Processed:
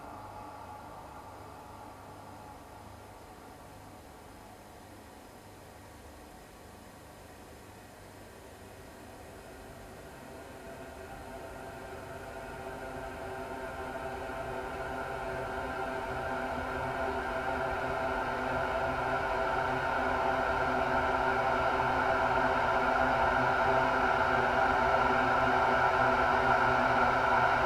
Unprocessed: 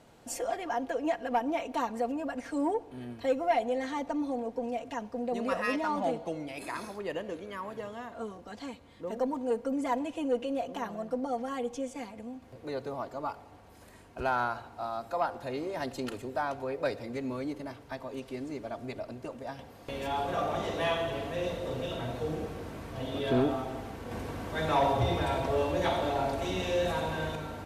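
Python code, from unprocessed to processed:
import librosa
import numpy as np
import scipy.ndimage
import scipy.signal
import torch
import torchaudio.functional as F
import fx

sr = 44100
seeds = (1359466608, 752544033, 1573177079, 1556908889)

y = fx.self_delay(x, sr, depth_ms=0.075)
y = fx.paulstretch(y, sr, seeds[0], factor=38.0, window_s=1.0, from_s=13.6)
y = F.gain(torch.from_numpy(y), 4.0).numpy()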